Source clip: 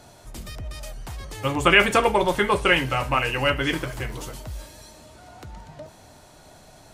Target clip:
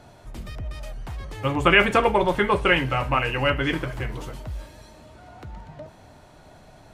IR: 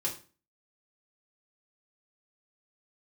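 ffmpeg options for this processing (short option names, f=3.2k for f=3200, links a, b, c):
-af "bass=f=250:g=2,treble=f=4k:g=-10"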